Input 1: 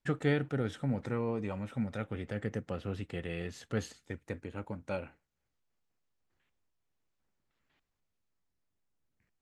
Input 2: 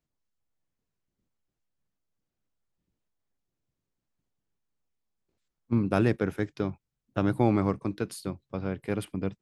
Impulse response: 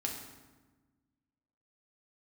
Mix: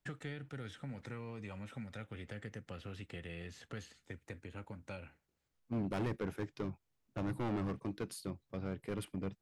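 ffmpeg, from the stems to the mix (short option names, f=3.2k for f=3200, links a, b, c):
-filter_complex "[0:a]acrossover=split=160|1500|3300[a][b][c][d];[a]acompressor=threshold=-47dB:ratio=4[e];[b]acompressor=threshold=-48dB:ratio=4[f];[c]acompressor=threshold=-51dB:ratio=4[g];[d]acompressor=threshold=-59dB:ratio=4[h];[e][f][g][h]amix=inputs=4:normalize=0,volume=-1dB[i];[1:a]volume=24.5dB,asoftclip=hard,volume=-24.5dB,volume=-6dB[j];[i][j]amix=inputs=2:normalize=0,asoftclip=type=tanh:threshold=-29dB"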